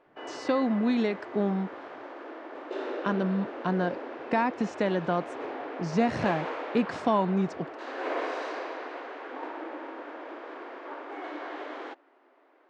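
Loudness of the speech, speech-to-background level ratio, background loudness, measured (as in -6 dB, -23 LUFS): -29.0 LUFS, 9.0 dB, -38.0 LUFS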